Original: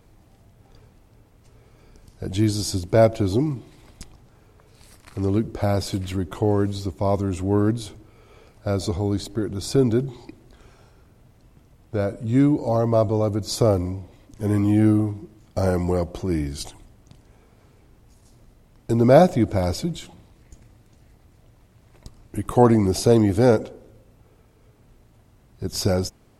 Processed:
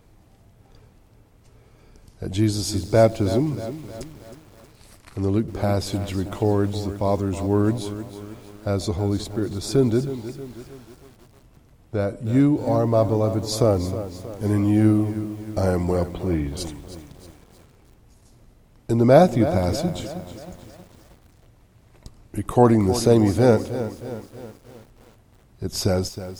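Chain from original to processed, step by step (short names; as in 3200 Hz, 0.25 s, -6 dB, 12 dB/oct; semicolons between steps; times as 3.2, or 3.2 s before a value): 16.12–16.57 steep low-pass 4000 Hz 72 dB/oct; lo-fi delay 0.316 s, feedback 55%, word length 7-bit, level -12 dB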